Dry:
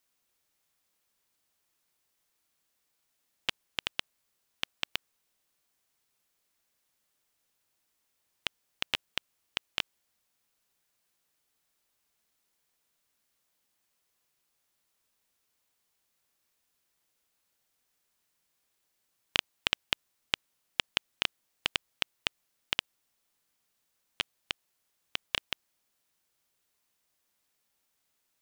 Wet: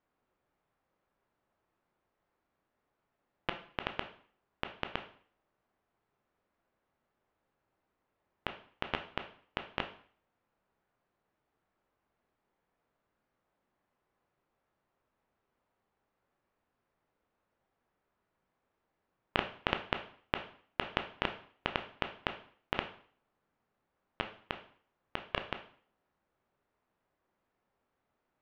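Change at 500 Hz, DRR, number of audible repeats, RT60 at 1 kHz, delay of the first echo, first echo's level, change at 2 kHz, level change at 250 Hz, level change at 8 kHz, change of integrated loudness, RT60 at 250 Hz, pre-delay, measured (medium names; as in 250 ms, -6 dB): +7.5 dB, 6.0 dB, no echo, 0.50 s, no echo, no echo, -3.0 dB, +7.5 dB, under -20 dB, -4.5 dB, 0.50 s, 7 ms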